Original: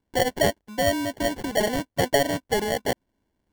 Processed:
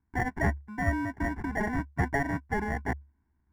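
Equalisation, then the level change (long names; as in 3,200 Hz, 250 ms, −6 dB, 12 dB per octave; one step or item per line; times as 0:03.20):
Savitzky-Golay smoothing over 25 samples
parametric band 71 Hz +13.5 dB 0.28 octaves
phaser with its sweep stopped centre 1,300 Hz, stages 4
0.0 dB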